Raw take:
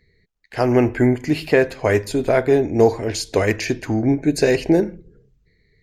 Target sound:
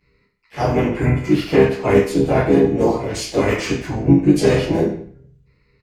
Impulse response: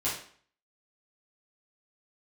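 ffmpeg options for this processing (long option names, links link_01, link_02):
-filter_complex "[0:a]asplit=2[link_01][link_02];[link_02]adelay=170,highpass=300,lowpass=3400,asoftclip=type=hard:threshold=-10dB,volume=-23dB[link_03];[link_01][link_03]amix=inputs=2:normalize=0[link_04];[1:a]atrim=start_sample=2205[link_05];[link_04][link_05]afir=irnorm=-1:irlink=0,asplit=4[link_06][link_07][link_08][link_09];[link_07]asetrate=22050,aresample=44100,atempo=2,volume=-9dB[link_10];[link_08]asetrate=29433,aresample=44100,atempo=1.49831,volume=-9dB[link_11];[link_09]asetrate=52444,aresample=44100,atempo=0.840896,volume=-6dB[link_12];[link_06][link_10][link_11][link_12]amix=inputs=4:normalize=0,volume=-8dB"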